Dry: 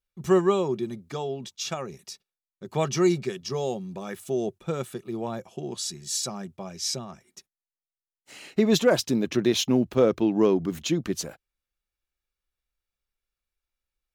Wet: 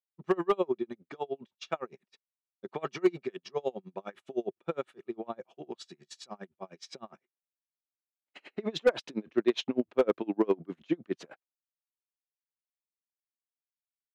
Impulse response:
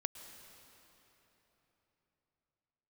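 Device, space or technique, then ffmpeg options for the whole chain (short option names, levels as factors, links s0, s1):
helicopter radio: -af "highpass=310,lowpass=2800,equalizer=f=5600:t=o:w=0.83:g=-3.5,aeval=exprs='val(0)*pow(10,-33*(0.5-0.5*cos(2*PI*9.8*n/s))/20)':c=same,asoftclip=type=hard:threshold=0.126,agate=range=0.0224:threshold=0.00158:ratio=3:detection=peak,volume=1.33"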